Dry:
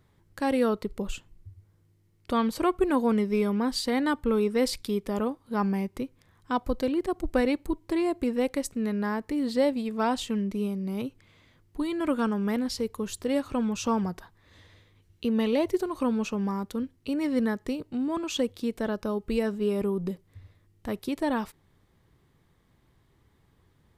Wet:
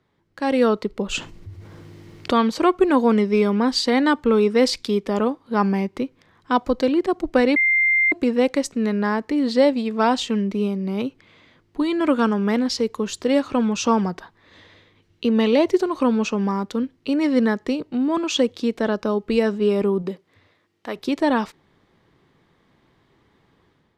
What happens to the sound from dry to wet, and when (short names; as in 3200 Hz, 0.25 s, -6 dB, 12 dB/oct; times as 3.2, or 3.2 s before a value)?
1.11–2.38 fast leveller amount 50%
7.56–8.12 bleep 2100 Hz -22.5 dBFS
20.01–20.95 HPF 260 Hz -> 660 Hz 6 dB/oct
whole clip: dynamic EQ 6700 Hz, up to +6 dB, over -54 dBFS, Q 1.1; AGC gain up to 8.5 dB; three-band isolator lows -13 dB, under 160 Hz, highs -16 dB, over 5700 Hz